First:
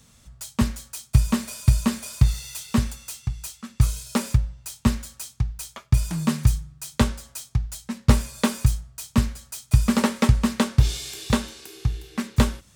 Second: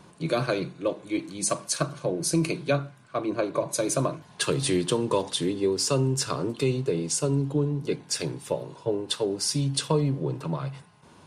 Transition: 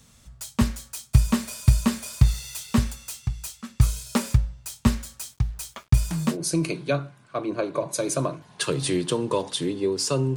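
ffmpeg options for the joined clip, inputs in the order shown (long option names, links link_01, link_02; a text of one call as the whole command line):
ffmpeg -i cue0.wav -i cue1.wav -filter_complex "[0:a]asettb=1/sr,asplit=3[link_01][link_02][link_03];[link_01]atrim=end=5.264[link_04];[link_02]atrim=start=5.26:end=6.38,asetpts=PTS-STARTPTS,afade=type=in:duration=0.004:curve=qsin,afade=type=out:start_time=1.116:duration=0.004:curve=qsin,acrusher=bits=8:mix=0:aa=0.5[link_05];[link_03]atrim=start=6.376[link_06];[link_04][link_05]acrossfade=duration=0.004:curve1=hsin:curve2=qsin[link_07];[link_07][link_06]acrossfade=duration=0.004:curve1=qsin:curve2=hsin,apad=whole_dur=10.36,atrim=end=10.36,atrim=end=6.38,asetpts=PTS-STARTPTS[link_08];[1:a]atrim=start=2.06:end=6.16,asetpts=PTS-STARTPTS[link_09];[link_08][link_09]acrossfade=duration=0.12:curve1=tri:curve2=tri" out.wav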